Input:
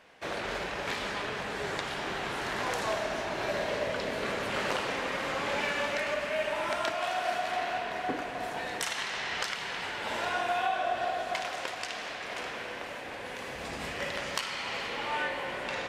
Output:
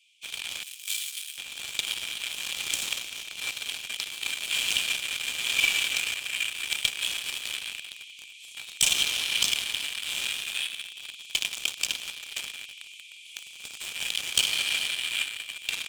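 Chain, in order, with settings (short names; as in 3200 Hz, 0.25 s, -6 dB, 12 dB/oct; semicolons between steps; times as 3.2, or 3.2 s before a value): rippled Chebyshev high-pass 2300 Hz, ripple 9 dB; in parallel at -8 dB: fuzz box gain 36 dB, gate -44 dBFS; 0.63–1.38 on the sum: differentiator; gain +6 dB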